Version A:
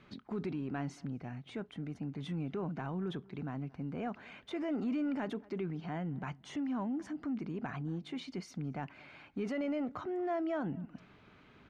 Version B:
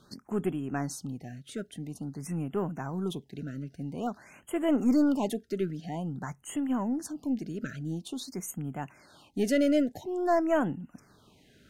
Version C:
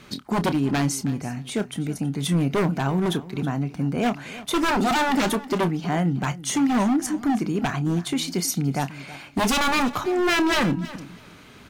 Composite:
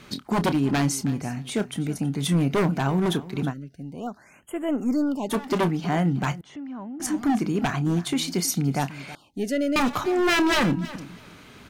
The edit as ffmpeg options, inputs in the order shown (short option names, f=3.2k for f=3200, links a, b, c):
-filter_complex "[1:a]asplit=2[a][b];[2:a]asplit=4[c][d][e][f];[c]atrim=end=3.54[g];[a]atrim=start=3.48:end=5.35[h];[d]atrim=start=5.29:end=6.412[i];[0:a]atrim=start=6.408:end=7.002[j];[e]atrim=start=6.998:end=9.152[k];[b]atrim=start=9.148:end=9.762[l];[f]atrim=start=9.758[m];[g][h]acrossfade=d=0.06:c1=tri:c2=tri[n];[n][i]acrossfade=d=0.06:c1=tri:c2=tri[o];[o][j]acrossfade=d=0.004:c1=hsin:c2=hsin[p];[p][k]acrossfade=d=0.004:c1=hsin:c2=hsin[q];[q][l]acrossfade=d=0.004:c1=hsin:c2=hsin[r];[r][m]acrossfade=d=0.004:c1=hsin:c2=hsin"